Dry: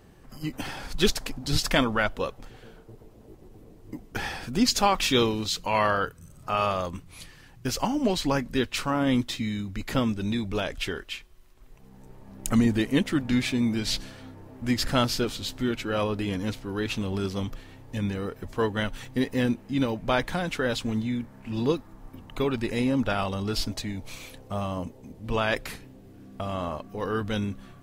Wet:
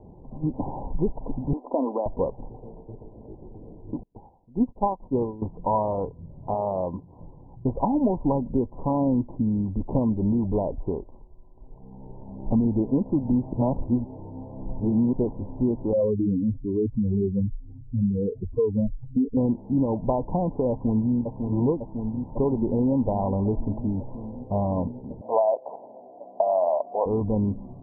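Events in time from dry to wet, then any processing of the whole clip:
0:01.53–0:02.06: elliptic high-pass filter 250 Hz
0:04.03–0:05.42: expander for the loud parts 2.5 to 1, over −38 dBFS
0:06.54–0:07.20: high-pass filter 160 Hz 6 dB per octave
0:13.53–0:15.13: reverse
0:15.93–0:19.37: expanding power law on the bin magnitudes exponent 3
0:20.70–0:21.13: delay throw 550 ms, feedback 80%, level −6.5 dB
0:25.21–0:27.06: high-pass with resonance 650 Hz, resonance Q 5.4
whole clip: downward compressor, threshold −25 dBFS; Chebyshev low-pass filter 1,000 Hz, order 8; level +7 dB

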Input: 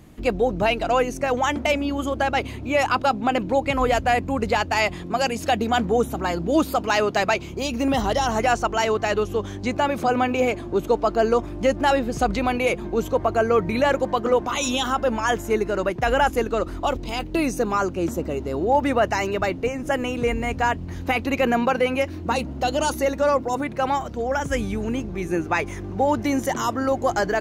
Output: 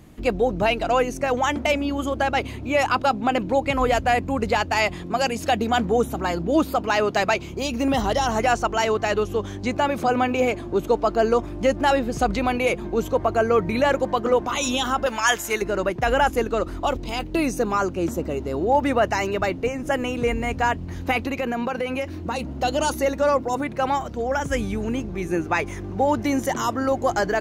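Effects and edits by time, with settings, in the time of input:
0:06.42–0:07.05: parametric band 8,400 Hz −4.5 dB 2.2 octaves
0:15.06–0:15.62: tilt shelving filter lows −9.5 dB, about 860 Hz
0:21.27–0:22.49: downward compressor 3 to 1, threshold −23 dBFS

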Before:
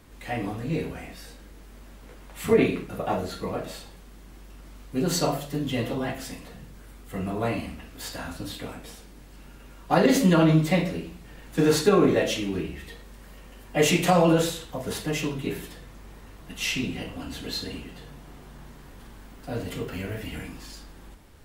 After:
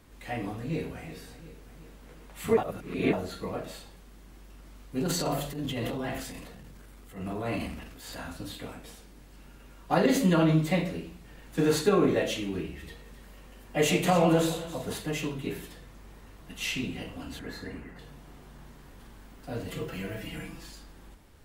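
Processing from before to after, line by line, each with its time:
0:00.57–0:01.03: delay throw 360 ms, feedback 60%, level −13.5 dB
0:02.57–0:03.13: reverse
0:04.99–0:08.16: transient designer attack −11 dB, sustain +7 dB
0:12.69–0:14.95: delay that swaps between a low-pass and a high-pass 139 ms, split 1,200 Hz, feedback 55%, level −8 dB
0:17.39–0:17.99: high shelf with overshoot 2,400 Hz −8 dB, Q 3
0:19.68–0:20.70: comb filter 6 ms
whole clip: dynamic equaliser 5,400 Hz, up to −6 dB, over −56 dBFS, Q 7.5; level −4 dB

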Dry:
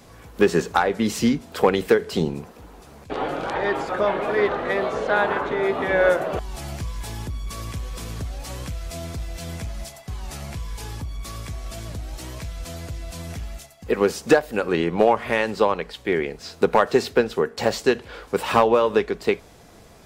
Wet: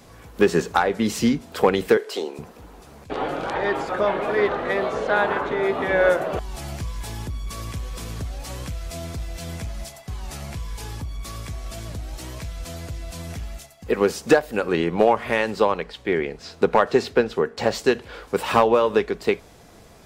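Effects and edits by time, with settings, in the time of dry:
0:01.97–0:02.39: high-pass filter 370 Hz 24 dB per octave
0:15.83–0:17.75: high-shelf EQ 9,400 Hz −12 dB

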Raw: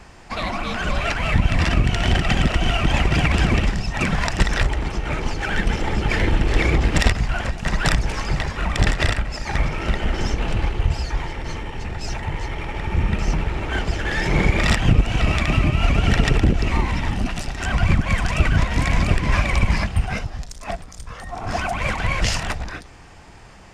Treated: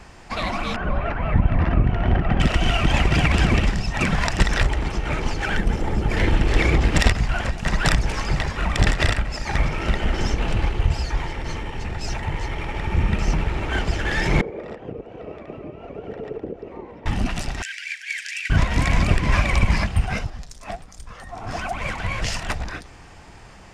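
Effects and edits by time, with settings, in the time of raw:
0:00.76–0:02.40: low-pass filter 1,300 Hz
0:05.57–0:06.17: parametric band 3,200 Hz −8.5 dB 2.8 octaves
0:14.41–0:17.06: resonant band-pass 460 Hz, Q 3.9
0:17.62–0:18.50: Chebyshev high-pass with heavy ripple 1,600 Hz, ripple 3 dB
0:20.30–0:22.49: flanger 1.4 Hz, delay 2.4 ms, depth 8.5 ms, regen +60%

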